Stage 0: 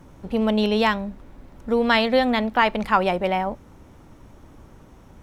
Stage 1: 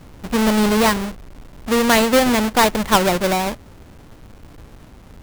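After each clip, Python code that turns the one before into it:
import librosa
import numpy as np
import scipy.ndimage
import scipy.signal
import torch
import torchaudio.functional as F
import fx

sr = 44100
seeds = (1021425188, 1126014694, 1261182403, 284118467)

y = fx.halfwave_hold(x, sr)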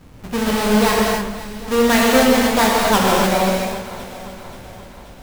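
y = fx.echo_alternate(x, sr, ms=265, hz=2000.0, feedback_pct=73, wet_db=-13.0)
y = fx.rev_gated(y, sr, seeds[0], gate_ms=320, shape='flat', drr_db=-4.0)
y = y * librosa.db_to_amplitude(-4.5)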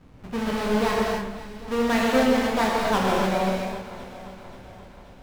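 y = fx.lowpass(x, sr, hz=3200.0, slope=6)
y = fx.doubler(y, sr, ms=31.0, db=-10.5)
y = y * librosa.db_to_amplitude(-7.0)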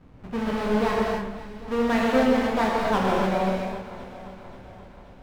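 y = fx.high_shelf(x, sr, hz=3700.0, db=-9.0)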